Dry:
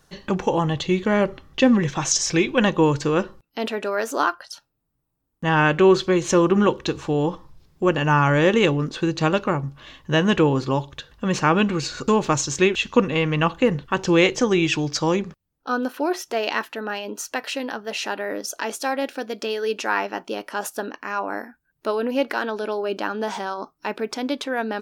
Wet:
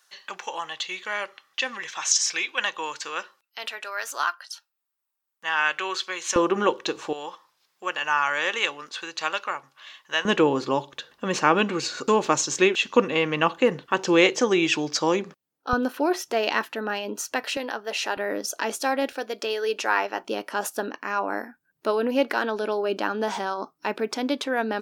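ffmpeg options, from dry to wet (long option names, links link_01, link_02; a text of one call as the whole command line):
ffmpeg -i in.wav -af "asetnsamples=nb_out_samples=441:pad=0,asendcmd='6.36 highpass f 420;7.13 highpass f 1100;10.25 highpass f 290;15.73 highpass f 98;17.57 highpass f 350;18.17 highpass f 140;19.12 highpass f 360;20.24 highpass f 160',highpass=1300" out.wav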